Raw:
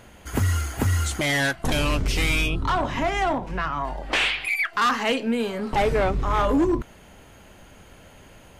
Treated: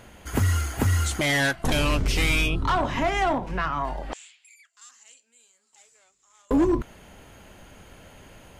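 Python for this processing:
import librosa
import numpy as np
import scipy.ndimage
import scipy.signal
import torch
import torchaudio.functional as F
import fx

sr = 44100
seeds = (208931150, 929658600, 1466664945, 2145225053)

y = fx.bandpass_q(x, sr, hz=7300.0, q=12.0, at=(4.13, 6.51))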